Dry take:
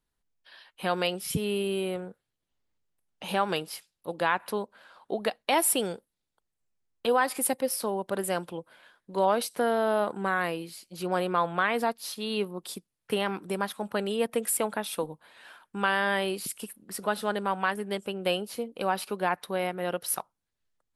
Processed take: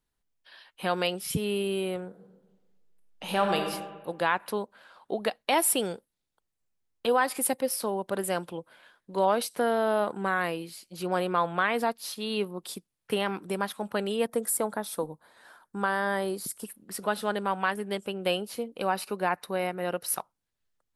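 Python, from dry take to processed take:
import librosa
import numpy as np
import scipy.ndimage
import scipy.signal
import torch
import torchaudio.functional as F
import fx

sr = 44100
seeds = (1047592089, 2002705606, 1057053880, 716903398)

y = fx.reverb_throw(x, sr, start_s=2.07, length_s=1.55, rt60_s=1.3, drr_db=3.0)
y = fx.peak_eq(y, sr, hz=2700.0, db=-14.5, octaves=0.69, at=(14.27, 16.65))
y = fx.notch(y, sr, hz=3300.0, q=6.7, at=(18.87, 20.13))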